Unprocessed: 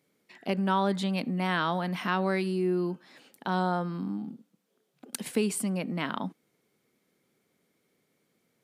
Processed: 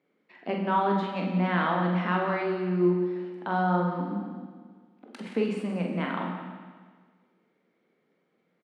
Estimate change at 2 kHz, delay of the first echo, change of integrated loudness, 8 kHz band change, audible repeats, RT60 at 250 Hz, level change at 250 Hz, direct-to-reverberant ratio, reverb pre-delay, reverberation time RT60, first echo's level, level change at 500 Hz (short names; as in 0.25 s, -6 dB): +1.5 dB, 45 ms, +2.0 dB, under -20 dB, 2, 1.6 s, +2.0 dB, -0.5 dB, 16 ms, 1.6 s, -5.5 dB, +2.5 dB